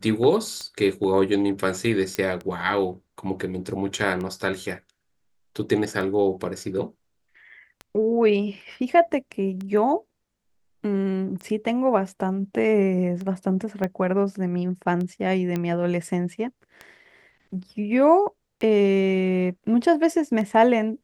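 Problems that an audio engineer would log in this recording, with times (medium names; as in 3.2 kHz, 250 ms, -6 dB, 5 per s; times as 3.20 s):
tick 33 1/3 rpm -21 dBFS
2.15 s: pop -12 dBFS
13.84 s: pop -15 dBFS
15.56 s: pop -14 dBFS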